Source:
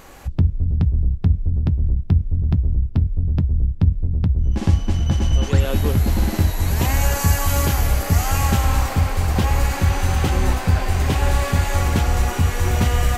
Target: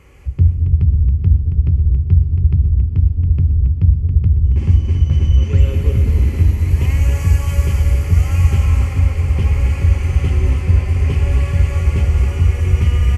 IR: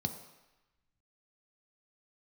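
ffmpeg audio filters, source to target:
-filter_complex "[0:a]aecho=1:1:275|550|825|1100:0.422|0.152|0.0547|0.0197[a];[1:a]atrim=start_sample=2205,asetrate=22932,aresample=44100[b];[a][b]afir=irnorm=-1:irlink=0,volume=-14dB"

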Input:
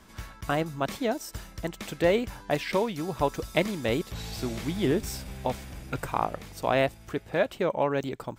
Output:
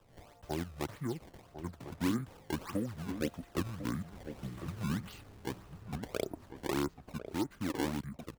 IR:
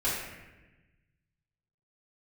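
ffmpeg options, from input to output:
-filter_complex "[0:a]acrossover=split=130|580|3300[a][b][c][d];[a]acompressor=threshold=-52dB:ratio=16[e];[d]flanger=delay=6.6:depth=7:regen=80:speed=0.72:shape=sinusoidal[f];[e][b][c][f]amix=inputs=4:normalize=0,asetrate=23361,aresample=44100,atempo=1.88775,acrusher=samples=20:mix=1:aa=0.000001:lfo=1:lforange=32:lforate=1.7,asplit=2[g][h];[h]adelay=1050,volume=-10dB,highshelf=f=4k:g=-23.6[i];[g][i]amix=inputs=2:normalize=0,volume=-9dB"

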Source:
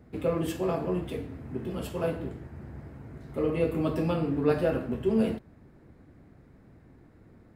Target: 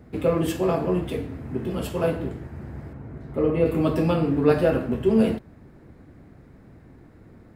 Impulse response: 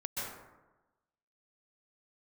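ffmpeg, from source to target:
-filter_complex "[0:a]asettb=1/sr,asplit=3[a][b][c];[a]atrim=end=2.934[d];[b]atrim=start=2.93:end=3.66,asetpts=PTS-STARTPTS,afade=t=in:d=0.004:c=qsin,afade=t=out:st=0.726:d=0.004:c=qsin,highshelf=f=2.8k:g=-11[e];[c]atrim=start=3.656[f];[d][e]acrossfade=d=0.004:c1=hsin:c2=qsin[g];[g][f]acrossfade=d=0.004:c1=qsin:c2=hsin,volume=6dB"

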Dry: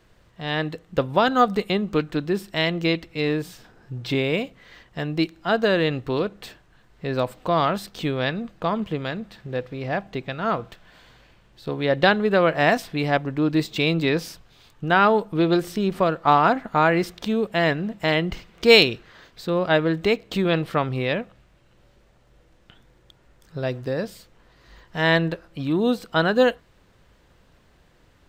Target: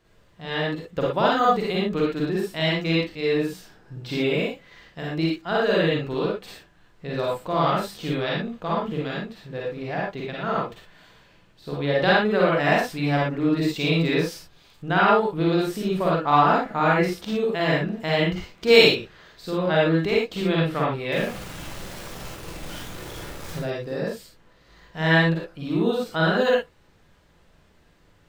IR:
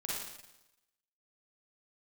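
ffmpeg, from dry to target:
-filter_complex "[0:a]asettb=1/sr,asplit=3[a][b][c];[a]atrim=end=21.124[d];[b]atrim=start=21.12:end=23.59,asetpts=PTS-STARTPTS,afade=t=in:d=0.004:c=qsin,afade=t=out:st=2.466:d=0.004:c=qsin,aeval=exprs='val(0)+0.5*0.0355*sgn(val(0))':c=same[e];[c]atrim=start=23.586[f];[d][e]acrossfade=d=0.004:c1=hsin:c2=qsin[g];[g][f]acrossfade=d=0.004:c1=qsin:c2=hsin[h];[1:a]atrim=start_sample=2205,afade=t=out:st=0.17:d=0.01,atrim=end_sample=7938[i];[h][i]afir=irnorm=-1:irlink=0,volume=-2dB"

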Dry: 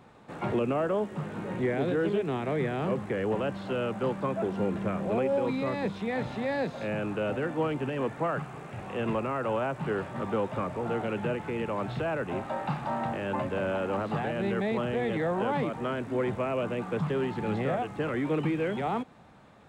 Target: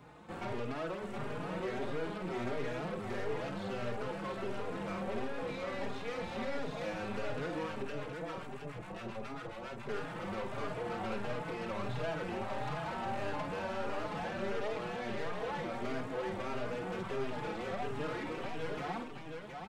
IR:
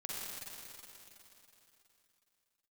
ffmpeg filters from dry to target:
-filter_complex "[0:a]acrossover=split=430|2500[a][b][c];[a]acompressor=threshold=-38dB:ratio=4[d];[b]acompressor=threshold=-34dB:ratio=4[e];[c]acompressor=threshold=-50dB:ratio=4[f];[d][e][f]amix=inputs=3:normalize=0,aeval=exprs='(tanh(79.4*val(0)+0.5)-tanh(0.5))/79.4':c=same,asettb=1/sr,asplit=3[g][h][i];[g]atrim=end=7.824[j];[h]atrim=start=7.82:end=9.89,asetpts=PTS-STARTPTS,afade=t=in:d=0.004:c=qsin,afade=t=out:st=2.066:d=0.004:c=qsin,acrossover=split=940[k][l];[k]aeval=exprs='val(0)*(1-1/2+1/2*cos(2*PI*7.3*n/s))':c=same[m];[l]aeval=exprs='val(0)*(1-1/2-1/2*cos(2*PI*7.3*n/s))':c=same[n];[m][n]amix=inputs=2:normalize=0[o];[i]atrim=start=9.886[p];[j][o]acrossfade=d=0.004:c1=hsin:c2=qsin[q];[q][p]acrossfade=d=0.004:c1=qsin:c2=hsin,aecho=1:1:50|718:0.447|0.562,asplit=2[r][s];[s]adelay=4.4,afreqshift=1.5[t];[r][t]amix=inputs=2:normalize=1,volume=4dB"

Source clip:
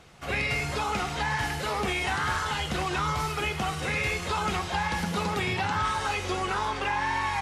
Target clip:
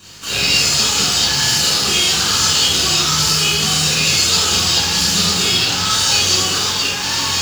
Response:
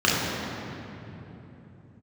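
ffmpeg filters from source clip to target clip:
-filter_complex "[0:a]bandreject=f=106.3:t=h:w=4,bandreject=f=212.6:t=h:w=4,bandreject=f=318.9:t=h:w=4,bandreject=f=425.2:t=h:w=4,bandreject=f=531.5:t=h:w=4,bandreject=f=637.8:t=h:w=4,bandreject=f=744.1:t=h:w=4,bandreject=f=850.4:t=h:w=4,bandreject=f=956.7:t=h:w=4,bandreject=f=1.063k:t=h:w=4,bandreject=f=1.1693k:t=h:w=4,bandreject=f=1.2756k:t=h:w=4,bandreject=f=1.3819k:t=h:w=4,bandreject=f=1.4882k:t=h:w=4,bandreject=f=1.5945k:t=h:w=4,bandreject=f=1.7008k:t=h:w=4,bandreject=f=1.8071k:t=h:w=4,bandreject=f=1.9134k:t=h:w=4,bandreject=f=2.0197k:t=h:w=4,bandreject=f=2.126k:t=h:w=4,bandreject=f=2.2323k:t=h:w=4,bandreject=f=2.3386k:t=h:w=4,bandreject=f=2.4449k:t=h:w=4,bandreject=f=2.5512k:t=h:w=4,bandreject=f=2.6575k:t=h:w=4,bandreject=f=2.7638k:t=h:w=4,bandreject=f=2.8701k:t=h:w=4,bandreject=f=2.9764k:t=h:w=4,bandreject=f=3.0827k:t=h:w=4,bandreject=f=3.189k:t=h:w=4,bandreject=f=3.2953k:t=h:w=4,bandreject=f=3.4016k:t=h:w=4,bandreject=f=3.5079k:t=h:w=4,bandreject=f=3.6142k:t=h:w=4,bandreject=f=3.7205k:t=h:w=4,bandreject=f=3.8268k:t=h:w=4,bandreject=f=3.9331k:t=h:w=4,asplit=2[a][b];[b]alimiter=level_in=1.5dB:limit=-24dB:level=0:latency=1,volume=-1.5dB,volume=-3dB[c];[a][c]amix=inputs=2:normalize=0,aexciter=amount=15.8:drive=7:freq=3.3k,acrossover=split=610|3600[d][e][f];[f]asoftclip=type=tanh:threshold=-7.5dB[g];[d][e][g]amix=inputs=3:normalize=0,flanger=delay=2:depth=7.4:regen=64:speed=1.8:shape=triangular,aeval=exprs='val(0)+0.00631*(sin(2*PI*50*n/s)+sin(2*PI*2*50*n/s)/2+sin(2*PI*3*50*n/s)/3+sin(2*PI*4*50*n/s)/4+sin(2*PI*5*50*n/s)/5)':c=same,acrusher=bits=4:dc=4:mix=0:aa=0.000001[h];[1:a]atrim=start_sample=2205,atrim=end_sample=6174[i];[h][i]afir=irnorm=-1:irlink=0,volume=-12.5dB"

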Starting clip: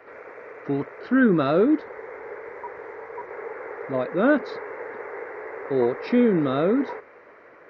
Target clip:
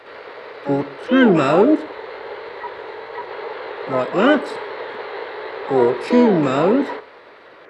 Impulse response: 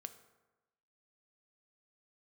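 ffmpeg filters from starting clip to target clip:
-filter_complex "[0:a]asplit=3[a][b][c];[b]asetrate=58866,aresample=44100,atempo=0.749154,volume=-12dB[d];[c]asetrate=88200,aresample=44100,atempo=0.5,volume=-8dB[e];[a][d][e]amix=inputs=3:normalize=0,asplit=2[f][g];[1:a]atrim=start_sample=2205,afade=t=out:st=0.19:d=0.01,atrim=end_sample=8820,asetrate=37485,aresample=44100[h];[g][h]afir=irnorm=-1:irlink=0,volume=3.5dB[i];[f][i]amix=inputs=2:normalize=0,volume=-1dB"

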